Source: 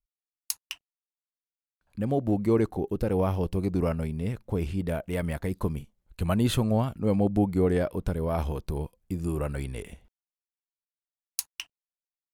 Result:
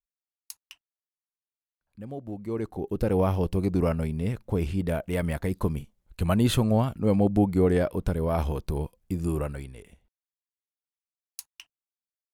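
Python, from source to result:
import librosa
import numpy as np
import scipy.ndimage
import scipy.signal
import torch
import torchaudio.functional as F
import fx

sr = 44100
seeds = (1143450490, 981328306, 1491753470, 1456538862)

y = fx.gain(x, sr, db=fx.line((2.4, -11.0), (3.04, 2.0), (9.36, 2.0), (9.77, -9.5)))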